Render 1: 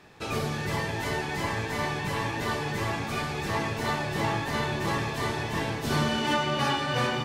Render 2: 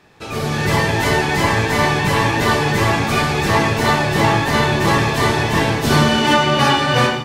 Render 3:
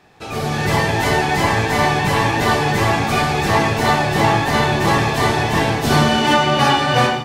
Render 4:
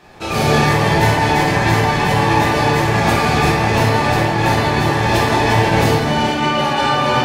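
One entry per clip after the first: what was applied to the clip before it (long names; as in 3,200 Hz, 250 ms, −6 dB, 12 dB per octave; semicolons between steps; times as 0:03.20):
automatic gain control gain up to 12.5 dB; level +1.5 dB
parametric band 750 Hz +7.5 dB 0.21 octaves; level −1 dB
compressor whose output falls as the input rises −21 dBFS, ratio −1; convolution reverb RT60 1.6 s, pre-delay 6 ms, DRR −4.5 dB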